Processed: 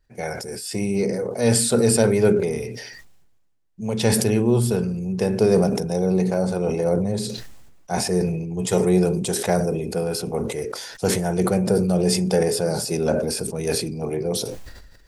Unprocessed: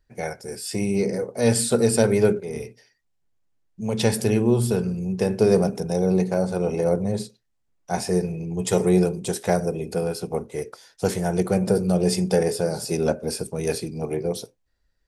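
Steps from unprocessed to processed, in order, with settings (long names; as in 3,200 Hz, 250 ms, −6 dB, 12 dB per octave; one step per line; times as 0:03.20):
level that may fall only so fast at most 40 dB per second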